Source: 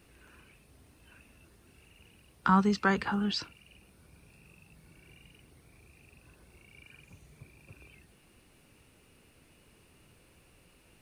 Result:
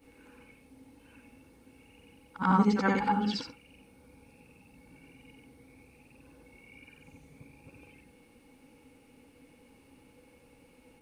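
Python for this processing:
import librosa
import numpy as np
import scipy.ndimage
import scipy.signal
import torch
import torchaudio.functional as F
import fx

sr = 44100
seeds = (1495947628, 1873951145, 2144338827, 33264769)

y = fx.frame_reverse(x, sr, frame_ms=182.0)
y = fx.small_body(y, sr, hz=(270.0, 490.0, 830.0, 2200.0), ring_ms=75, db=17)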